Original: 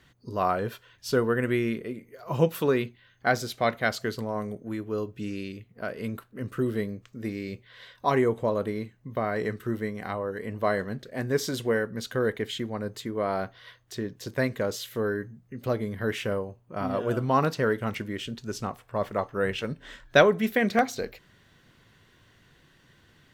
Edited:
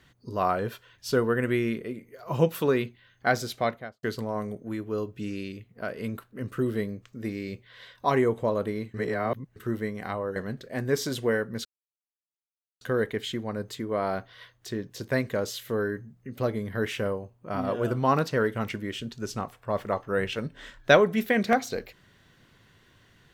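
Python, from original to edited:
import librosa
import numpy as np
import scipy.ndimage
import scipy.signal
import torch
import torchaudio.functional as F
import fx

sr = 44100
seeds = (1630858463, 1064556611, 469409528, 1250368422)

y = fx.studio_fade_out(x, sr, start_s=3.53, length_s=0.5)
y = fx.edit(y, sr, fx.reverse_span(start_s=8.94, length_s=0.62),
    fx.cut(start_s=10.36, length_s=0.42),
    fx.insert_silence(at_s=12.07, length_s=1.16), tone=tone)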